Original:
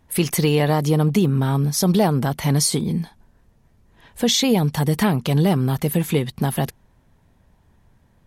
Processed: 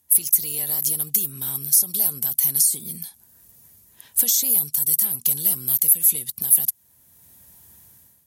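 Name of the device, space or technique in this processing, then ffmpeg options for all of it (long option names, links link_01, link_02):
FM broadcast chain: -filter_complex "[0:a]highpass=frequency=61:width=0.5412,highpass=frequency=61:width=1.3066,dynaudnorm=framelen=170:gausssize=5:maxgain=15dB,acrossover=split=2000|5000[link_01][link_02][link_03];[link_01]acompressor=threshold=-23dB:ratio=4[link_04];[link_02]acompressor=threshold=-38dB:ratio=4[link_05];[link_03]acompressor=threshold=-22dB:ratio=4[link_06];[link_04][link_05][link_06]amix=inputs=3:normalize=0,aemphasis=mode=production:type=75fm,alimiter=limit=-3dB:level=0:latency=1:release=235,asoftclip=type=hard:threshold=-5.5dB,lowpass=frequency=15000:width=0.5412,lowpass=frequency=15000:width=1.3066,aemphasis=mode=production:type=75fm,volume=-15dB"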